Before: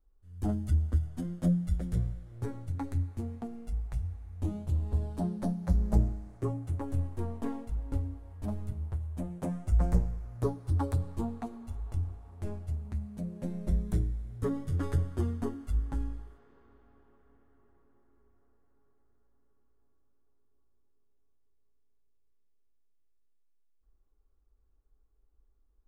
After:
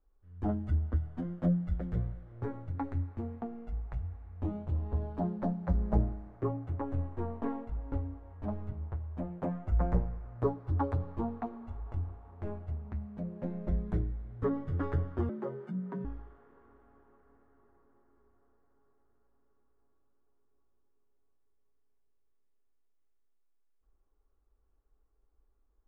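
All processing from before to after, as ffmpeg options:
-filter_complex "[0:a]asettb=1/sr,asplit=3[s0][s1][s2];[s0]atrim=end=15.294[s3];[s1]atrim=start=15.29:end=16.05,asetpts=PTS-STARTPTS,afade=t=in:d=0.004:c=qsin,afade=t=out:st=0.756:d=0.004:c=qsin,afreqshift=130,acompressor=threshold=0.00708:ratio=1.5:attack=3.2:release=140:knee=1:detection=peak[s4];[s2]atrim=start=16.046[s5];[s3][s4]acrossfade=d=0.004:c1=hsin:c2=qsin[s6];[s6][s5]acrossfade=d=0.004:c1=qsin:c2=hsin,lowpass=1600,lowshelf=f=330:g=-8.5,volume=1.78"

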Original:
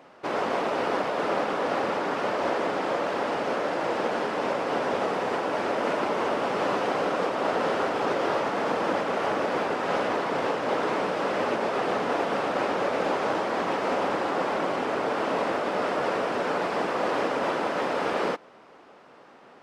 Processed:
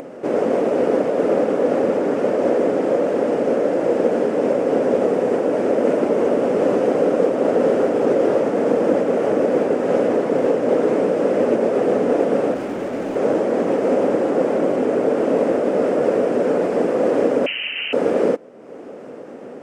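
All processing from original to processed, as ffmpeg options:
-filter_complex "[0:a]asettb=1/sr,asplit=3[s0][s1][s2];[s0]atrim=end=12.544[s3];[s1]atrim=start=12.54:end=13.16,asetpts=PTS-STARTPTS,afade=t=in:d=0.004:c=qsin,afade=t=out:st=0.616:d=0.004:c=qsin,lowpass=5500,equalizer=f=500:w=2.3:g=-8,asoftclip=type=hard:threshold=0.0335[s4];[s2]atrim=start=13.156[s5];[s3][s4]acrossfade=d=0.004:c1=hsin:c2=qsin[s6];[s6][s5]acrossfade=d=0.004:c1=qsin:c2=hsin,asettb=1/sr,asplit=3[s7][s8][s9];[s7]atrim=end=17.464[s10];[s8]atrim=start=17.46:end=17.93,asetpts=PTS-STARTPTS,afade=t=in:d=0.004:c=qsin,afade=t=out:st=0.466:d=0.004:c=qsin,tiltshelf=f=1400:g=8.5,acrusher=bits=8:dc=4:mix=0:aa=0.000001,lowpass=f=2800:t=q:w=0.5098,lowpass=f=2800:t=q:w=0.6013,lowpass=f=2800:t=q:w=0.9,lowpass=f=2800:t=q:w=2.563,afreqshift=-3300[s11];[s9]atrim=start=17.926[s12];[s10][s11]acrossfade=d=0.004:c1=hsin:c2=qsin[s13];[s13][s12]acrossfade=d=0.004:c1=qsin:c2=hsin,equalizer=f=125:t=o:w=1:g=5,equalizer=f=250:t=o:w=1:g=10,equalizer=f=500:t=o:w=1:g=12,equalizer=f=1000:t=o:w=1:g=-7,equalizer=f=4000:t=o:w=1:g=-9,equalizer=f=8000:t=o:w=1:g=6,acompressor=mode=upward:threshold=0.0501:ratio=2.5"

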